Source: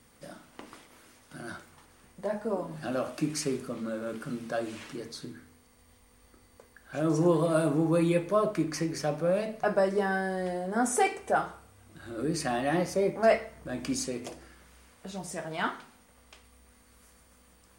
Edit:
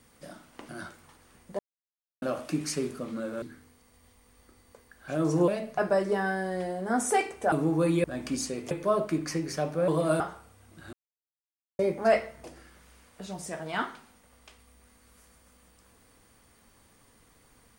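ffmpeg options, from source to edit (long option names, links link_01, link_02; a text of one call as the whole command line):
ffmpeg -i in.wav -filter_complex "[0:a]asplit=14[link_01][link_02][link_03][link_04][link_05][link_06][link_07][link_08][link_09][link_10][link_11][link_12][link_13][link_14];[link_01]atrim=end=0.692[link_15];[link_02]atrim=start=1.378:end=2.28,asetpts=PTS-STARTPTS,afade=type=out:start_time=0.898:duration=0.004:curve=hsin[link_16];[link_03]atrim=start=2.28:end=2.91,asetpts=PTS-STARTPTS,volume=0[link_17];[link_04]atrim=start=2.91:end=4.112,asetpts=PTS-STARTPTS,afade=type=in:duration=0.004:curve=hsin[link_18];[link_05]atrim=start=5.268:end=7.332[link_19];[link_06]atrim=start=9.338:end=11.382[link_20];[link_07]atrim=start=7.648:end=8.172[link_21];[link_08]atrim=start=13.618:end=14.292[link_22];[link_09]atrim=start=8.168:end=9.342[link_23];[link_10]atrim=start=7.328:end=7.652[link_24];[link_11]atrim=start=11.378:end=12.11,asetpts=PTS-STARTPTS,afade=type=out:start_time=0.728:duration=0.004:curve=hsin[link_25];[link_12]atrim=start=12.11:end=12.97,asetpts=PTS-STARTPTS,volume=0[link_26];[link_13]atrim=start=12.97:end=13.622,asetpts=PTS-STARTPTS,afade=type=in:duration=0.004:curve=hsin[link_27];[link_14]atrim=start=14.288[link_28];[link_16][link_17][link_18]concat=n=3:v=0:a=1[link_29];[link_15][link_29]acrossfade=duration=0.004:curve1=hsin:curve2=hsin[link_30];[link_30][link_19]acrossfade=duration=0.004:curve1=hsin:curve2=hsin[link_31];[link_31][link_20]acrossfade=duration=0.004:curve1=hsin:curve2=hsin[link_32];[link_32][link_21]acrossfade=duration=0.004:curve1=hsin:curve2=hsin[link_33];[link_33][link_22]acrossfade=duration=0.004:curve1=hsin:curve2=hsin[link_34];[link_34][link_23]acrossfade=duration=0.004:curve1=hsin:curve2=hsin[link_35];[link_35][link_24]acrossfade=duration=0.004:curve1=hsin:curve2=hsin[link_36];[link_25][link_26][link_27]concat=n=3:v=0:a=1[link_37];[link_36][link_37]acrossfade=duration=0.004:curve1=hsin:curve2=hsin[link_38];[link_38][link_28]acrossfade=duration=0.004:curve1=hsin:curve2=hsin" out.wav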